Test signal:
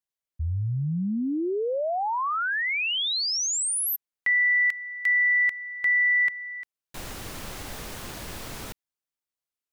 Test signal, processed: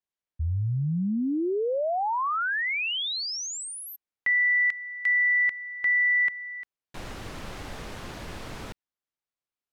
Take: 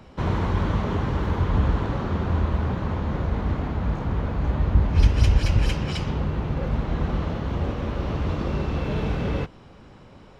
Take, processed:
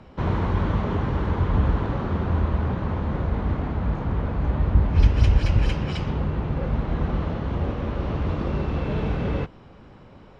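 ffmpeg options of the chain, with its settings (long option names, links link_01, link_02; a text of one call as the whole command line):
ffmpeg -i in.wav -af "aemphasis=mode=reproduction:type=50fm" out.wav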